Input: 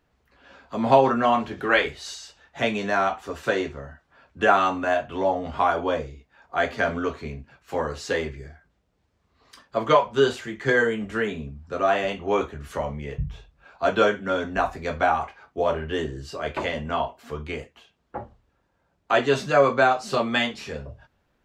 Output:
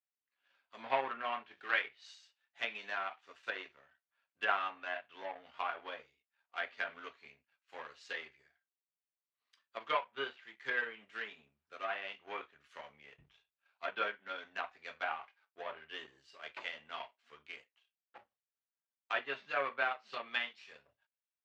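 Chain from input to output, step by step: power-law waveshaper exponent 1.4; low-pass that closes with the level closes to 2.4 kHz, closed at -23.5 dBFS; band-pass filter 2.7 kHz, Q 1.1; trim -2.5 dB

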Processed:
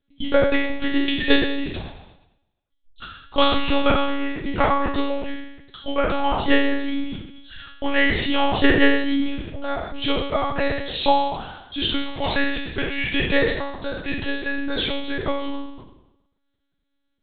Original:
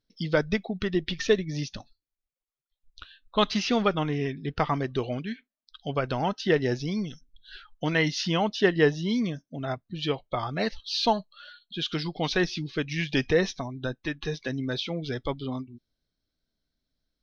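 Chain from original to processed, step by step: spectral sustain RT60 0.94 s; 12.03–14.10 s: bass shelf 360 Hz -6 dB; monotone LPC vocoder at 8 kHz 280 Hz; trim +4.5 dB

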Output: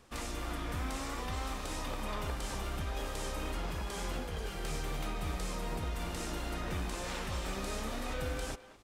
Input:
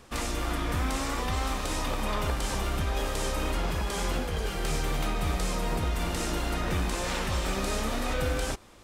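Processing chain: speakerphone echo 210 ms, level -14 dB; trim -8 dB

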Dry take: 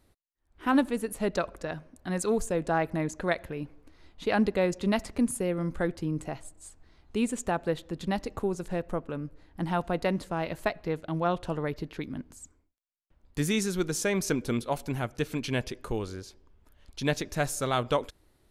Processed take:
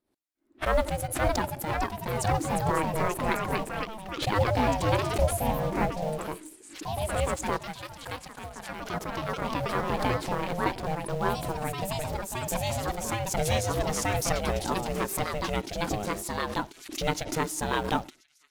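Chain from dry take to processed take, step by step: 7.59–9.75 s: high-pass 1.4 kHz 6 dB/octave; gate -49 dBFS, range -37 dB; on a send: feedback echo behind a high-pass 1033 ms, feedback 70%, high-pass 2.5 kHz, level -21.5 dB; on the sum: vibrato 0.91 Hz 7.6 cents; ring modulator 310 Hz; in parallel at -12 dB: word length cut 6-bit, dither none; on the sum: ever faster or slower copies 599 ms, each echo +2 st, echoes 3; swell ahead of each attack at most 89 dB/s

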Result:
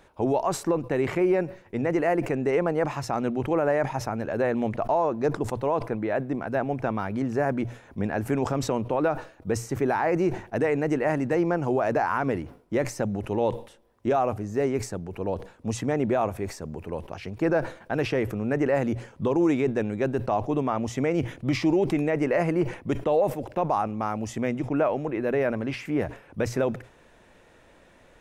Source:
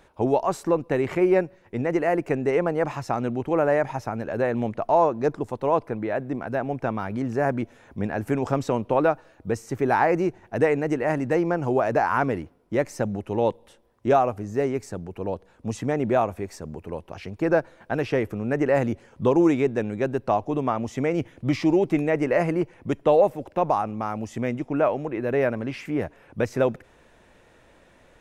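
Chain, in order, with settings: hum notches 60/120 Hz; peak limiter -14.5 dBFS, peak gain reduction 7 dB; decay stretcher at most 140 dB/s

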